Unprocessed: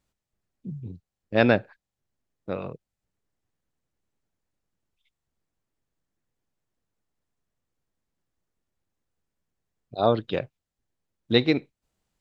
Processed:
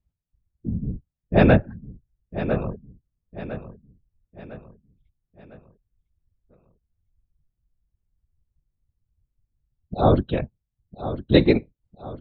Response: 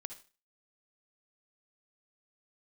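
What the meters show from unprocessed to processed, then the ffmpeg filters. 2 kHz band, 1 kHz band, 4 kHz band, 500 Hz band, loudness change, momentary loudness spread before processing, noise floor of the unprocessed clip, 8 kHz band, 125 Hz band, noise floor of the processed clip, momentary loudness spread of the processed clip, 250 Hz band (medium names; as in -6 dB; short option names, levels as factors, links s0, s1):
0.0 dB, +3.5 dB, -2.0 dB, +3.5 dB, +2.5 dB, 19 LU, under -85 dBFS, no reading, +9.5 dB, -83 dBFS, 22 LU, +5.5 dB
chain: -filter_complex "[0:a]aemphasis=mode=reproduction:type=bsi,afftfilt=real='hypot(re,im)*cos(2*PI*random(0))':imag='hypot(re,im)*sin(2*PI*random(1))':win_size=512:overlap=0.75,afftdn=nr=14:nf=-55,asplit=2[s0][s1];[s1]aecho=0:1:1004|2008|3012|4016:0.251|0.111|0.0486|0.0214[s2];[s0][s2]amix=inputs=2:normalize=0,volume=2.37"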